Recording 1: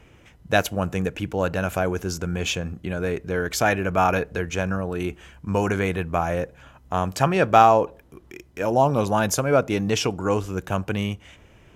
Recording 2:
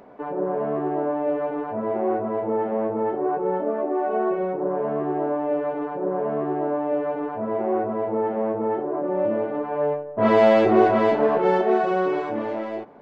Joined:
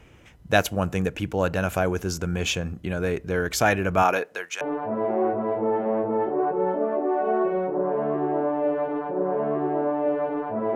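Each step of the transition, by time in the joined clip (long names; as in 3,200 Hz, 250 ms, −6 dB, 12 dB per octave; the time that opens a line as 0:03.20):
recording 1
0:04.02–0:04.61: high-pass filter 210 Hz → 1,400 Hz
0:04.61: continue with recording 2 from 0:01.47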